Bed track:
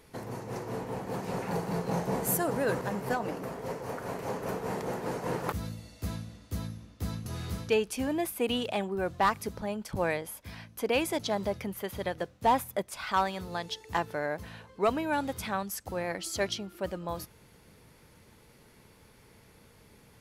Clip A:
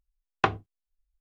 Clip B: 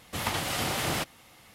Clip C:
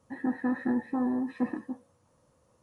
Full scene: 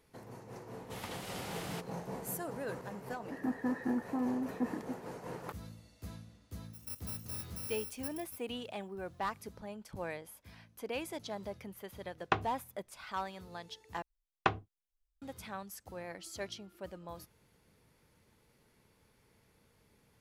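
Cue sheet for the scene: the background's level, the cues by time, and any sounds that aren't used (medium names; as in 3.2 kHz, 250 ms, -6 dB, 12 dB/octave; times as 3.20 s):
bed track -11 dB
0.77 s: add B -14.5 dB
3.20 s: add C -5.5 dB
6.63 s: add C -15.5 dB + bit-reversed sample order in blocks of 128 samples
11.88 s: add A -7 dB
14.02 s: replace with A -6.5 dB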